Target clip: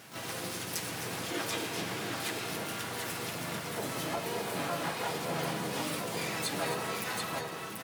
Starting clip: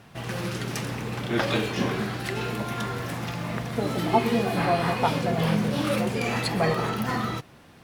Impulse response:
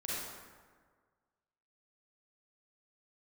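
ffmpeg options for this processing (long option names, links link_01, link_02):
-filter_complex "[0:a]highpass=frequency=330:poles=1,asoftclip=type=tanh:threshold=-12dB,acompressor=threshold=-43dB:ratio=2,equalizer=frequency=12000:width_type=o:width=1.7:gain=11.5,aecho=1:1:6.2:0.67,aecho=1:1:69|111|259|267|736:0.112|0.141|0.211|0.224|0.631,asplit=4[link_01][link_02][link_03][link_04];[link_02]asetrate=37084,aresample=44100,atempo=1.18921,volume=-4dB[link_05];[link_03]asetrate=66075,aresample=44100,atempo=0.66742,volume=-7dB[link_06];[link_04]asetrate=88200,aresample=44100,atempo=0.5,volume=-6dB[link_07];[link_01][link_05][link_06][link_07]amix=inputs=4:normalize=0,volume=-3.5dB"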